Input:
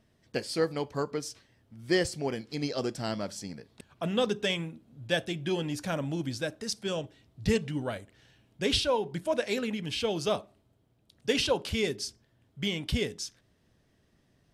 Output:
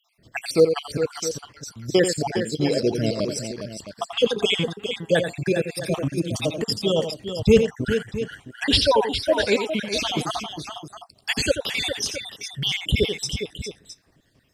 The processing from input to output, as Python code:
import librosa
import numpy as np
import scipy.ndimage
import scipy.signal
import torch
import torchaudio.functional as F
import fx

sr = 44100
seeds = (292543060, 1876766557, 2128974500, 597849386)

p1 = fx.spec_dropout(x, sr, seeds[0], share_pct=65)
p2 = fx.level_steps(p1, sr, step_db=22)
p3 = p1 + (p2 * librosa.db_to_amplitude(2.0))
p4 = fx.echo_multitap(p3, sr, ms=(87, 408, 664), db=(-8.5, -8.5, -13.0))
p5 = fx.dynamic_eq(p4, sr, hz=460.0, q=6.6, threshold_db=-45.0, ratio=4.0, max_db=5)
y = p5 * librosa.db_to_amplitude(8.0)